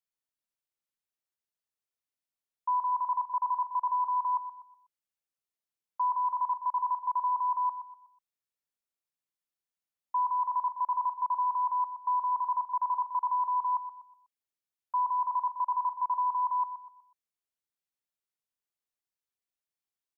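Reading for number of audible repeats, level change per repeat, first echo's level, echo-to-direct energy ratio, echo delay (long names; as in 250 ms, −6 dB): 3, −9.0 dB, −11.0 dB, −10.5 dB, 123 ms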